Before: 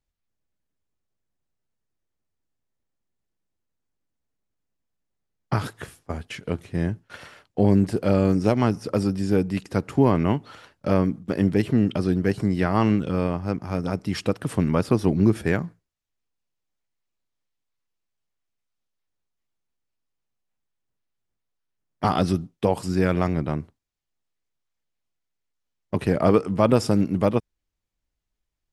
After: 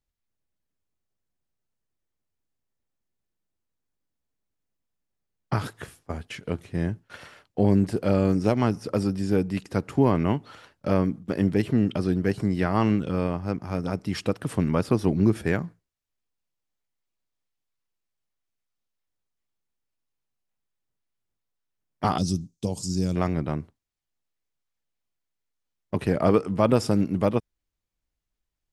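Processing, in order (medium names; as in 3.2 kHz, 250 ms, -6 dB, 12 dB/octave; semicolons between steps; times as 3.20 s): 22.18–23.16 s: FFT filter 180 Hz 0 dB, 1.8 kHz -21 dB, 6.5 kHz +13 dB, 11 kHz 0 dB; trim -2 dB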